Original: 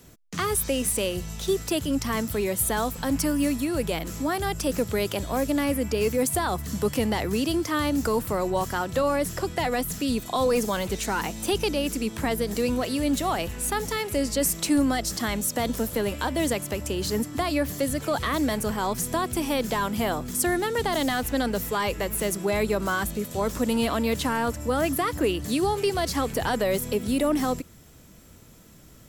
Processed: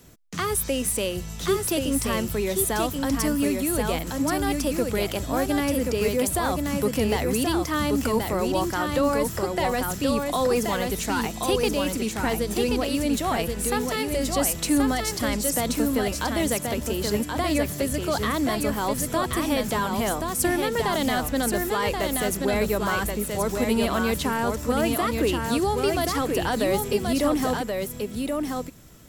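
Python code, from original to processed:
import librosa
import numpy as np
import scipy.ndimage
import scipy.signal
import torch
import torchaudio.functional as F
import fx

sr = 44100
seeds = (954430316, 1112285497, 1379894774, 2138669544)

y = x + 10.0 ** (-4.0 / 20.0) * np.pad(x, (int(1079 * sr / 1000.0), 0))[:len(x)]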